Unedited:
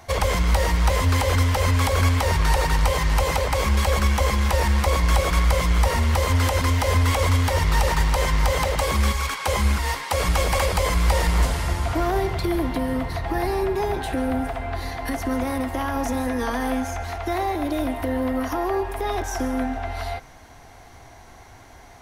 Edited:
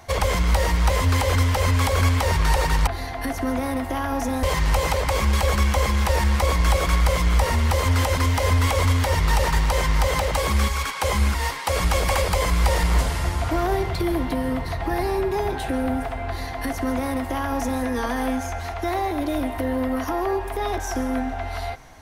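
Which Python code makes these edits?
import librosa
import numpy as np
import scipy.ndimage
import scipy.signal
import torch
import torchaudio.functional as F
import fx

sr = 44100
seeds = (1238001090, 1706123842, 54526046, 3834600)

y = fx.edit(x, sr, fx.duplicate(start_s=14.71, length_s=1.56, to_s=2.87), tone=tone)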